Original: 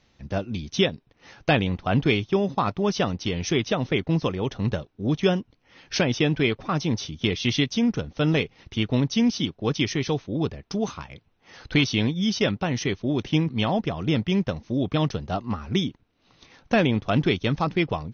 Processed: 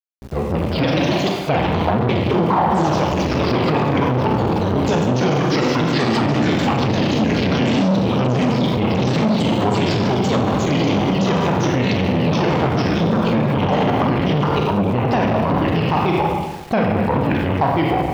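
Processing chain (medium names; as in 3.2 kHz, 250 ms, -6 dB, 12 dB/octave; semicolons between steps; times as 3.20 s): sawtooth pitch modulation -6.5 st, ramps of 209 ms; high-pass 96 Hz 6 dB/octave; peaking EQ 810 Hz +13.5 dB 0.48 oct; ever faster or slower copies 226 ms, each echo +2 st, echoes 3; level rider gain up to 9 dB; Schroeder reverb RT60 1.1 s, combs from 32 ms, DRR 0.5 dB; small samples zeroed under -36.5 dBFS; bass shelf 400 Hz +8 dB; peak limiter -7.5 dBFS, peak gain reduction 12.5 dB; transformer saturation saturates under 420 Hz; trim +1 dB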